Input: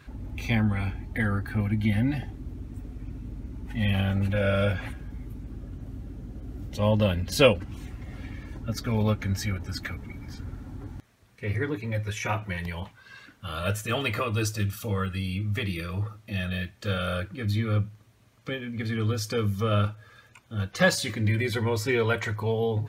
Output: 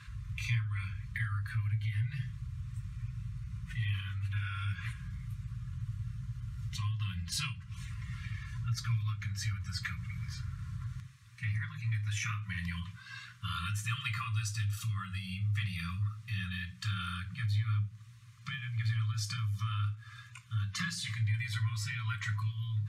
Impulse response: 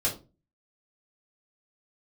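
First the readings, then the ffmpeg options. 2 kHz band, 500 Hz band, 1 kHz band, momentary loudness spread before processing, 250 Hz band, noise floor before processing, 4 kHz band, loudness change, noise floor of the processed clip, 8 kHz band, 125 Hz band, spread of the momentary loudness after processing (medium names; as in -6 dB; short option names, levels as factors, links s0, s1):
-8.0 dB, under -40 dB, -10.5 dB, 16 LU, -18.0 dB, -57 dBFS, -7.0 dB, -9.0 dB, -53 dBFS, -5.5 dB, -4.5 dB, 9 LU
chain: -filter_complex "[0:a]lowpass=11000,acompressor=threshold=0.0178:ratio=4,asplit=2[s0][s1];[s1]equalizer=f=125:t=o:w=1:g=10,equalizer=f=250:t=o:w=1:g=5,equalizer=f=1000:t=o:w=1:g=-7,equalizer=f=2000:t=o:w=1:g=8,equalizer=f=4000:t=o:w=1:g=5,equalizer=f=8000:t=o:w=1:g=12[s2];[1:a]atrim=start_sample=2205[s3];[s2][s3]afir=irnorm=-1:irlink=0,volume=0.1[s4];[s0][s4]amix=inputs=2:normalize=0,afftfilt=real='re*(1-between(b*sr/4096,190,1000))':imag='im*(1-between(b*sr/4096,190,1000))':win_size=4096:overlap=0.75,highpass=68"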